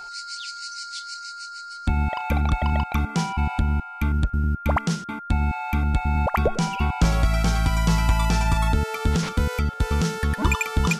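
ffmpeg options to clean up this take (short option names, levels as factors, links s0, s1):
-af "bandreject=f=1400:w=30"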